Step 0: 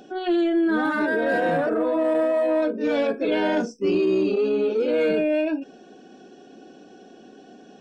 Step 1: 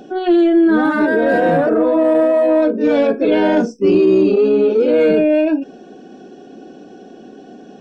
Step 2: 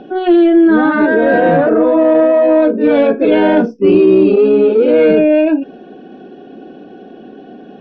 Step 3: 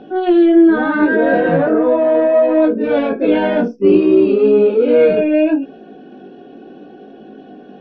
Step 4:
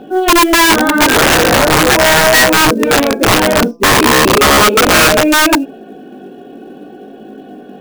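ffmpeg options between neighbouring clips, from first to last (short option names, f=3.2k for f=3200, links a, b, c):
-af "tiltshelf=f=970:g=3.5,volume=6.5dB"
-af "lowpass=f=3.6k:w=0.5412,lowpass=f=3.6k:w=1.3066,volume=3.5dB"
-af "flanger=delay=18.5:depth=2.5:speed=0.69"
-af "acrusher=bits=8:mode=log:mix=0:aa=0.000001,bandreject=f=168.9:t=h:w=4,bandreject=f=337.8:t=h:w=4,bandreject=f=506.7:t=h:w=4,bandreject=f=675.6:t=h:w=4,bandreject=f=844.5:t=h:w=4,bandreject=f=1.0134k:t=h:w=4,bandreject=f=1.1823k:t=h:w=4,aeval=exprs='(mod(2.66*val(0)+1,2)-1)/2.66':c=same,volume=5dB"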